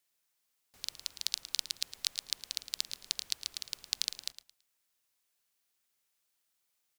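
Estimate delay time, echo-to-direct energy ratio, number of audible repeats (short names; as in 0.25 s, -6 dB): 0.11 s, -12.5 dB, 2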